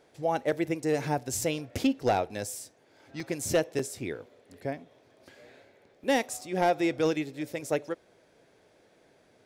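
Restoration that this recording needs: clip repair -17.5 dBFS; interpolate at 3.20/3.79/6.04/6.41/7.53 s, 3.7 ms

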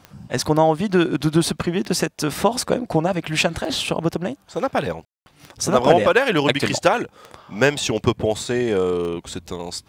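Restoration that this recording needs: de-click; room tone fill 5.05–5.26 s

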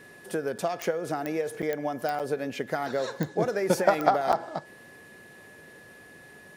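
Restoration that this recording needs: de-click; band-stop 1.7 kHz, Q 30; interpolate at 0.58/1.62/2.19/4.32 s, 7.6 ms

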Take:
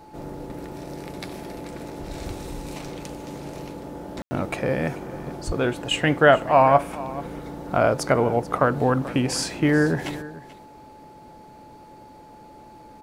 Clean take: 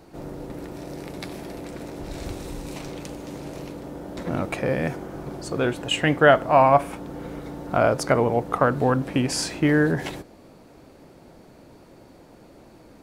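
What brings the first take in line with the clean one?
band-stop 860 Hz, Q 30; 5.46–5.58 s: high-pass 140 Hz 24 dB/octave; room tone fill 4.22–4.31 s; inverse comb 436 ms -17.5 dB

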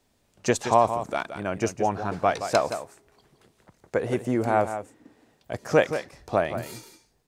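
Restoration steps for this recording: inverse comb 172 ms -10 dB

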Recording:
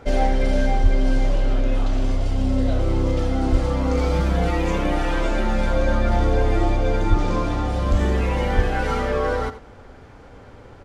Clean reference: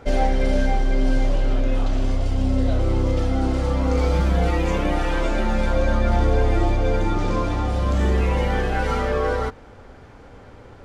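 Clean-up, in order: de-plosive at 0.82/3.51/7.09/7.90/8.55 s; inverse comb 85 ms -13.5 dB

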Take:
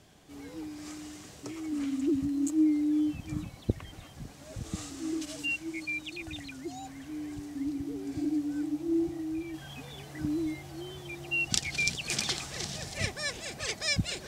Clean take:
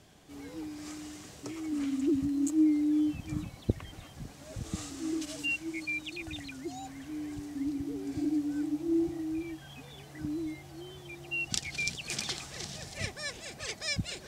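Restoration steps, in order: trim 0 dB, from 9.54 s -4 dB

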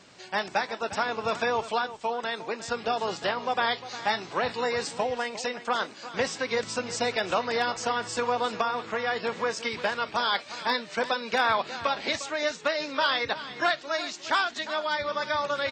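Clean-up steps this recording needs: clip repair -14.5 dBFS; inverse comb 354 ms -14 dB

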